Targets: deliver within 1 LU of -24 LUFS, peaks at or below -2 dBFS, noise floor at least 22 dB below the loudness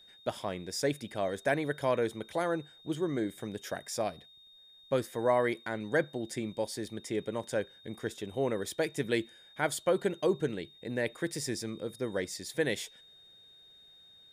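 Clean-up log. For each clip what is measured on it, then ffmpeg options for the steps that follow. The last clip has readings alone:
steady tone 3700 Hz; tone level -55 dBFS; loudness -33.5 LUFS; peak -14.5 dBFS; loudness target -24.0 LUFS
-> -af "bandreject=f=3.7k:w=30"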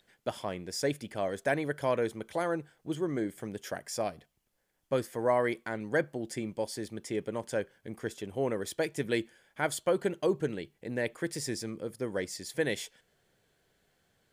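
steady tone none; loudness -33.5 LUFS; peak -14.5 dBFS; loudness target -24.0 LUFS
-> -af "volume=9.5dB"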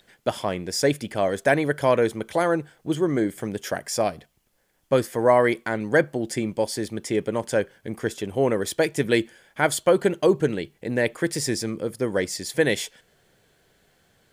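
loudness -24.0 LUFS; peak -5.0 dBFS; noise floor -67 dBFS

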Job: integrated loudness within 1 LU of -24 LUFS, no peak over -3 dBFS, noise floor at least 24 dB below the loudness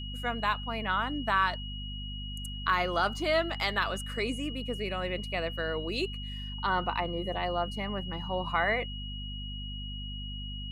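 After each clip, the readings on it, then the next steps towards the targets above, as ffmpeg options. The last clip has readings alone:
hum 50 Hz; harmonics up to 250 Hz; hum level -37 dBFS; steady tone 2900 Hz; tone level -41 dBFS; loudness -32.0 LUFS; peak -14.0 dBFS; loudness target -24.0 LUFS
-> -af "bandreject=f=50:t=h:w=6,bandreject=f=100:t=h:w=6,bandreject=f=150:t=h:w=6,bandreject=f=200:t=h:w=6,bandreject=f=250:t=h:w=6"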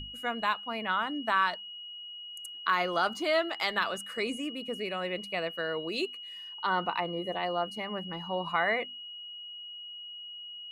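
hum none; steady tone 2900 Hz; tone level -41 dBFS
-> -af "bandreject=f=2.9k:w=30"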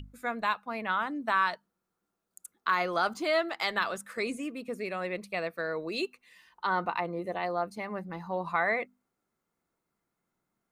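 steady tone none; loudness -31.5 LUFS; peak -15.0 dBFS; loudness target -24.0 LUFS
-> -af "volume=7.5dB"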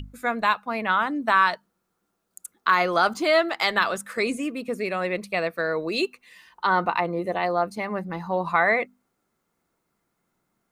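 loudness -24.0 LUFS; peak -7.5 dBFS; noise floor -76 dBFS

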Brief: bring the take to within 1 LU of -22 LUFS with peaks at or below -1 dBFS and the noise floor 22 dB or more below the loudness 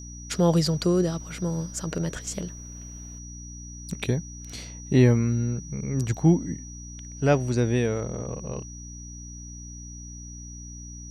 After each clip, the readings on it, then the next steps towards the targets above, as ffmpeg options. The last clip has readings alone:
hum 60 Hz; harmonics up to 300 Hz; hum level -40 dBFS; steady tone 5800 Hz; tone level -43 dBFS; loudness -25.5 LUFS; peak -8.0 dBFS; loudness target -22.0 LUFS
-> -af "bandreject=f=60:t=h:w=4,bandreject=f=120:t=h:w=4,bandreject=f=180:t=h:w=4,bandreject=f=240:t=h:w=4,bandreject=f=300:t=h:w=4"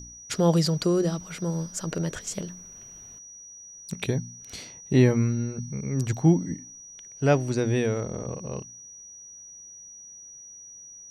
hum none; steady tone 5800 Hz; tone level -43 dBFS
-> -af "bandreject=f=5.8k:w=30"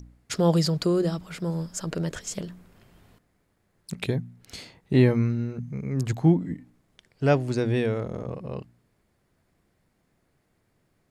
steady tone none; loudness -26.0 LUFS; peak -7.5 dBFS; loudness target -22.0 LUFS
-> -af "volume=4dB"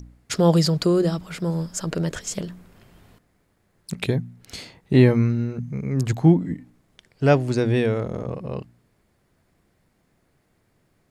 loudness -22.0 LUFS; peak -3.5 dBFS; noise floor -67 dBFS

